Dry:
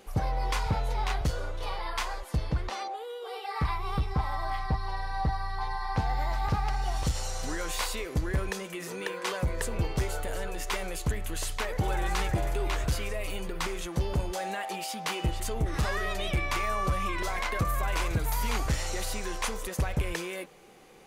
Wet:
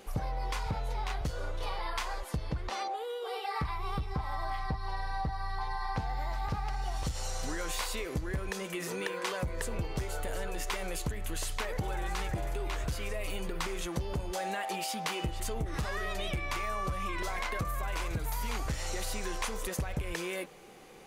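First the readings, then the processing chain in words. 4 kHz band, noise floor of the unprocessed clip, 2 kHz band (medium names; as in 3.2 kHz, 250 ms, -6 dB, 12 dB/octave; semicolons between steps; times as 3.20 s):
-3.0 dB, -40 dBFS, -3.5 dB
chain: compression, threshold -32 dBFS, peak gain reduction 9 dB; trim +1.5 dB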